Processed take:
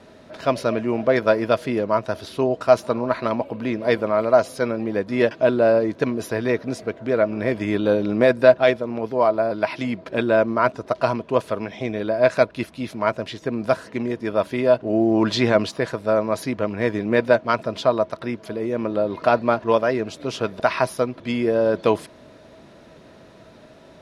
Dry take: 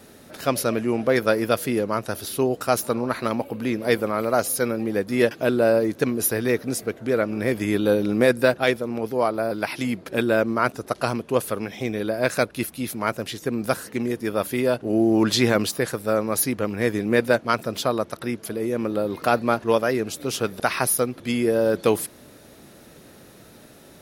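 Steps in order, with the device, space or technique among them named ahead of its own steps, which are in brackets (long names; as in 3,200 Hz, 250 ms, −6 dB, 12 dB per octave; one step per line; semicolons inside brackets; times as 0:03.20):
inside a cardboard box (low-pass filter 4,400 Hz 12 dB per octave; hollow resonant body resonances 640/980 Hz, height 11 dB, ringing for 65 ms)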